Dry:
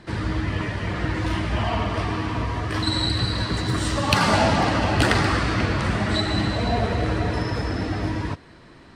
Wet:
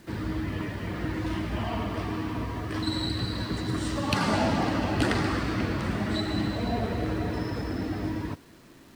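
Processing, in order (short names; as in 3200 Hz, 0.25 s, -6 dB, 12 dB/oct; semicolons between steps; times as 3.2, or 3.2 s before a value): bell 270 Hz +6.5 dB 1.4 oct; requantised 8-bit, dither none; gain -8.5 dB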